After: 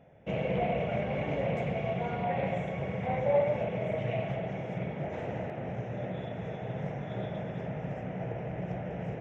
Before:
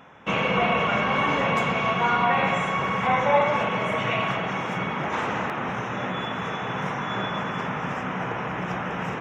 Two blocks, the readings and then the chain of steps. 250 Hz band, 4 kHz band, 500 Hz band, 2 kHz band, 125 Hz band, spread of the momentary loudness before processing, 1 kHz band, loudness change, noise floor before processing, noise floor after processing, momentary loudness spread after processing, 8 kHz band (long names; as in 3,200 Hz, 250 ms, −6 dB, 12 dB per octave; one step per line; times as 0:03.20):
−6.5 dB, −18.0 dB, −4.0 dB, −16.5 dB, −2.0 dB, 8 LU, −14.0 dB, −9.0 dB, −31 dBFS, −40 dBFS, 7 LU, below −20 dB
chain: drawn EQ curve 130 Hz 0 dB, 250 Hz −10 dB, 430 Hz −6 dB, 650 Hz −2 dB, 1,100 Hz −28 dB, 2,000 Hz −14 dB, 3,600 Hz −20 dB
highs frequency-modulated by the lows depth 0.17 ms